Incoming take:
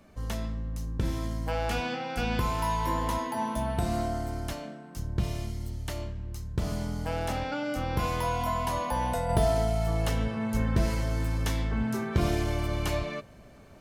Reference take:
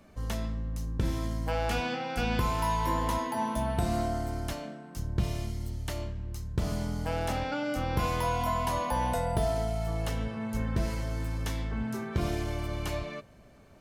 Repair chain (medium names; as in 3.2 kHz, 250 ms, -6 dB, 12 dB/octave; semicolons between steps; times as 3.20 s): gain correction -4 dB, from 9.29 s